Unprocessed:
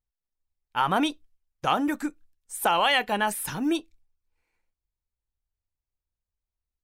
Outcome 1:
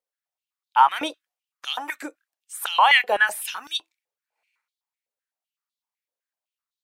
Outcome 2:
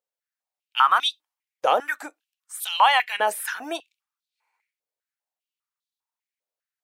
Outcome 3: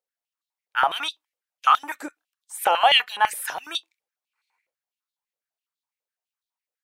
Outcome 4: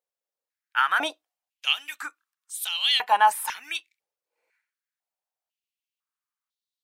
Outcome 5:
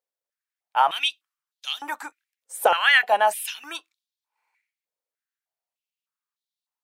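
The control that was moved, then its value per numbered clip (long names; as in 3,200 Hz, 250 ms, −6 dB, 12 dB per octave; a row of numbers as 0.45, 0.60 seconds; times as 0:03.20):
high-pass on a step sequencer, speed: 7.9, 5, 12, 2, 3.3 Hertz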